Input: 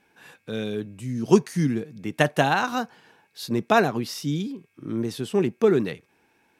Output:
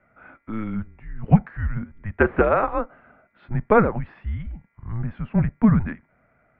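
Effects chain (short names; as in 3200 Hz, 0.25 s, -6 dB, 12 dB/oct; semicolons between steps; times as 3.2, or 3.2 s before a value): 2.24–2.65 added noise pink -40 dBFS; mistuned SSB -220 Hz 260–2200 Hz; gain +3.5 dB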